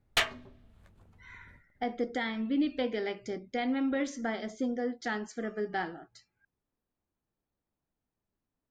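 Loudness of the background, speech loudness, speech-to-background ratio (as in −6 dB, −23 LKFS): −31.0 LKFS, −33.5 LKFS, −2.5 dB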